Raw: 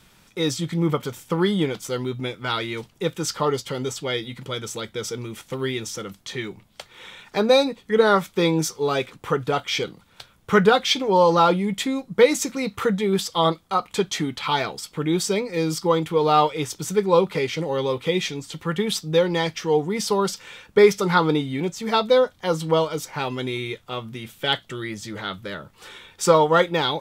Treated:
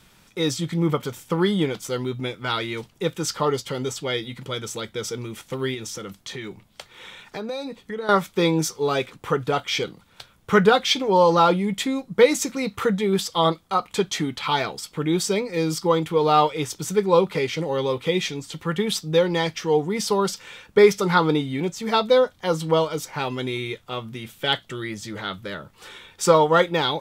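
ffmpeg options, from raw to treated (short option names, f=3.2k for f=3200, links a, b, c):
-filter_complex "[0:a]asettb=1/sr,asplit=3[a][b][c];[a]atrim=end=5.744[d];[b]atrim=start=5.74:end=8.09,asetpts=PTS-STARTPTS,afade=t=in:d=0.004:c=qsin,afade=t=out:st=2.346:d=0.004:c=qsin,acompressor=threshold=-29dB:ratio=4:attack=3.2:release=140:knee=1:detection=peak[e];[c]atrim=start=8.086[f];[d][e]acrossfade=d=0.004:c1=hsin:c2=qsin[g];[g][f]acrossfade=d=0.004:c1=qsin:c2=hsin"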